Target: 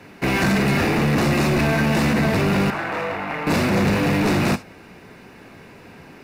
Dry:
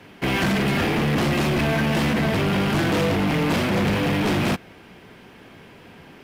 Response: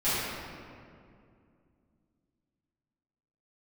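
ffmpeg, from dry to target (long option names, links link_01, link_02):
-filter_complex "[0:a]asettb=1/sr,asplit=3[link_01][link_02][link_03];[link_01]atrim=end=2.704[link_04];[link_02]atrim=start=2.7:end=3.47,asetpts=PTS-STARTPTS,afade=type=in:duration=0.004:curve=qsin,afade=type=out:start_time=0.766:duration=0.004:curve=qsin,acrossover=split=580 2600:gain=0.158 1 0.141[link_05][link_06][link_07];[link_05][link_06][link_07]amix=inputs=3:normalize=0[link_08];[link_03]atrim=start=3.466[link_09];[link_04][link_08]acrossfade=duration=0.004:curve1=hsin:curve2=qsin[link_10];[link_10][link_09]acrossfade=duration=0.004:curve1=qsin:curve2=hsin,bandreject=frequency=3200:width=5.2,asplit=2[link_11][link_12];[link_12]equalizer=frequency=7100:width=0.55:gain=13[link_13];[1:a]atrim=start_sample=2205,atrim=end_sample=3528[link_14];[link_13][link_14]afir=irnorm=-1:irlink=0,volume=-26dB[link_15];[link_11][link_15]amix=inputs=2:normalize=0,volume=2dB"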